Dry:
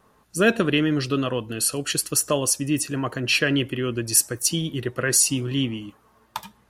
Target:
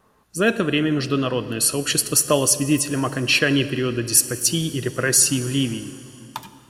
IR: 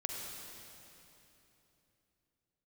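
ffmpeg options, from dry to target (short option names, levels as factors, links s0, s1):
-filter_complex "[0:a]dynaudnorm=f=210:g=11:m=3.76,asplit=2[s0][s1];[1:a]atrim=start_sample=2205[s2];[s1][s2]afir=irnorm=-1:irlink=0,volume=0.299[s3];[s0][s3]amix=inputs=2:normalize=0,volume=0.75"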